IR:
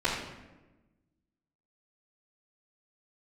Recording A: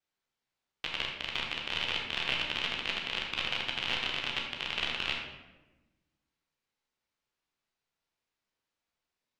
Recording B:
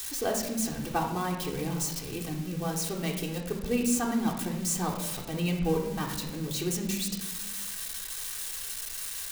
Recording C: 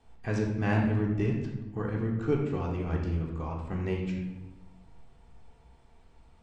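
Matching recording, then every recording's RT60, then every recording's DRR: A; 1.1, 1.1, 1.1 seconds; −20.0, −2.0, −11.5 decibels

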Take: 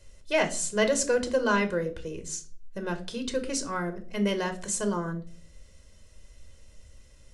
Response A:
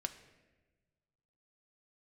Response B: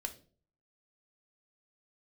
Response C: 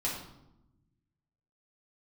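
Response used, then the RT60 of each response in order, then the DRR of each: B; 1.3, 0.45, 0.90 seconds; 7.0, 5.5, −5.5 decibels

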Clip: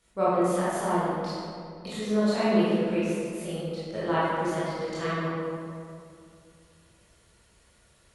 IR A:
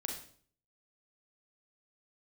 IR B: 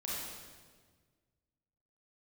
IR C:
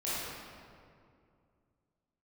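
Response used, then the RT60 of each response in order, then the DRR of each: C; 0.50, 1.5, 2.4 seconds; 1.0, −7.0, −11.0 decibels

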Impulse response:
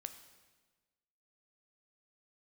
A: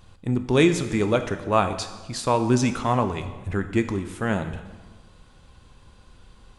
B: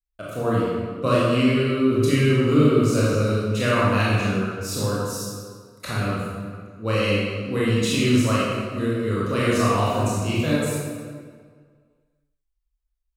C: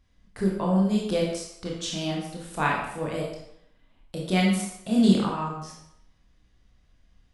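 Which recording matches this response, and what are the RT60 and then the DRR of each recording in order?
A; 1.3, 1.8, 0.75 seconds; 8.5, −8.0, −3.0 decibels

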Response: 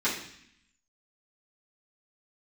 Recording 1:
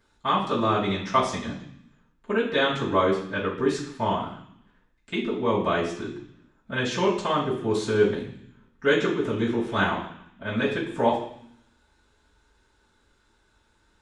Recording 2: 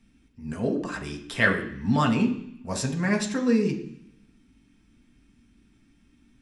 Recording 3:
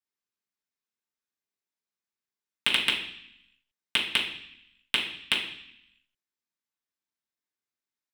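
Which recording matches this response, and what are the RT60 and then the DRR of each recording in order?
1; 0.65, 0.65, 0.65 seconds; −11.5, 1.0, −7.0 decibels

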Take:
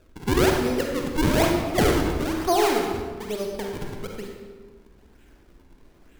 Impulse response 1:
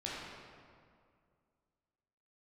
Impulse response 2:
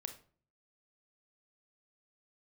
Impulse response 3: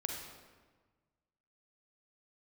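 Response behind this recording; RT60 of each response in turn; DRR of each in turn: 3; 2.2, 0.45, 1.4 seconds; −7.0, 7.0, 1.0 decibels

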